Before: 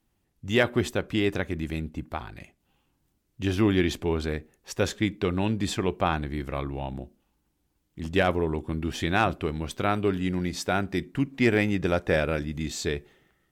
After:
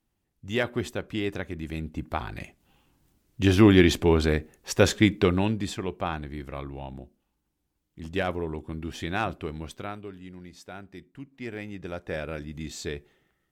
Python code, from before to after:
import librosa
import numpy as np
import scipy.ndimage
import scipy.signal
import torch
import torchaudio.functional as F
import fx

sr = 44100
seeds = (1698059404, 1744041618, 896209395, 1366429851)

y = fx.gain(x, sr, db=fx.line((1.58, -4.5), (2.37, 6.0), (5.2, 6.0), (5.75, -5.0), (9.66, -5.0), (10.09, -16.0), (11.35, -16.0), (12.59, -5.0)))